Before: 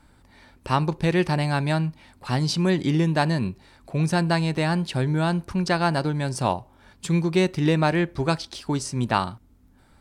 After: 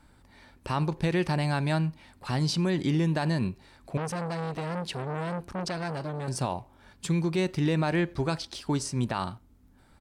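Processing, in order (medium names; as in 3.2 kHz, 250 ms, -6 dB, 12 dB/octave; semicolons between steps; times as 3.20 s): peak limiter -16 dBFS, peak gain reduction 9.5 dB; speakerphone echo 90 ms, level -24 dB; 3.97–6.28 s: transformer saturation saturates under 890 Hz; trim -2.5 dB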